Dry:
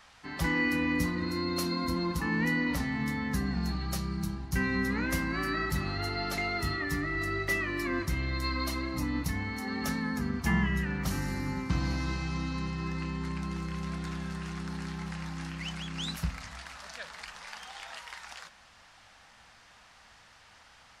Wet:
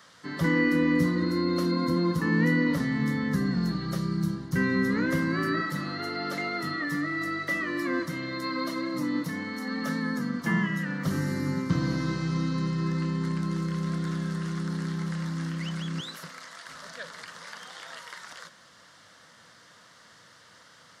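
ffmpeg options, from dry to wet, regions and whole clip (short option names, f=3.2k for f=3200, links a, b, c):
-filter_complex "[0:a]asettb=1/sr,asplit=3[a][b][c];[a]atrim=end=5.604[d];[b]atrim=start=5.6:end=11.05,asetpts=PTS-STARTPTS,afade=t=in:d=0.004:c=qsin,afade=t=out:st=5.446:d=0.004:c=qsin,highpass=210,bandreject=f=390:w=5.2[e];[c]atrim=start=11.046[f];[d][e]acrossfade=d=0.004:c1=hsin:c2=qsin[g];[g][f]acrossfade=d=0.004:c1=qsin:c2=hsin,asettb=1/sr,asplit=3[h][i][j];[h]atrim=end=16.004[k];[i]atrim=start=16:end=16.69,asetpts=PTS-STARTPTS,afade=t=in:d=0.004:c=qsin,afade=t=out:st=0.686:d=0.004:c=qsin,highpass=460,aeval=exprs='(tanh(28.2*val(0)+0.3)-tanh(0.3))/28.2':c=same[l];[j]atrim=start=16.686[m];[k][l]acrossfade=d=0.004:c1=hsin:c2=qsin[n];[n][m]acrossfade=d=0.004:c1=qsin:c2=hsin,highpass=f=110:w=0.5412,highpass=f=110:w=1.3066,acrossover=split=3300[o][p];[p]acompressor=threshold=-48dB:ratio=4:attack=1:release=60[q];[o][q]amix=inputs=2:normalize=0,equalizer=f=160:t=o:w=0.33:g=4,equalizer=f=315:t=o:w=0.33:g=3,equalizer=f=500:t=o:w=0.33:g=5,equalizer=f=800:t=o:w=0.33:g=-12,equalizer=f=2.5k:t=o:w=0.33:g=-12,volume=4.5dB"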